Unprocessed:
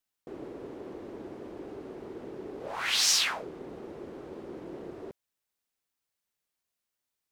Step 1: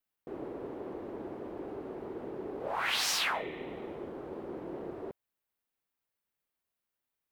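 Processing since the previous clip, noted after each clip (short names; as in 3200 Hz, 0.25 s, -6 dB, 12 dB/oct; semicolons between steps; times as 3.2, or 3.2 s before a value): dynamic EQ 830 Hz, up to +4 dB, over -49 dBFS, Q 0.97; spectral repair 3.36–4.12, 1800–4100 Hz both; bell 6200 Hz -9.5 dB 1.6 oct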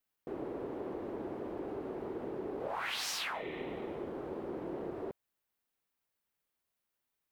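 compressor 6:1, threshold -36 dBFS, peak gain reduction 8.5 dB; gain +1.5 dB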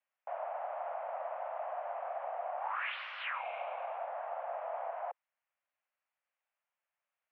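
mistuned SSB +320 Hz 210–2500 Hz; gain +1 dB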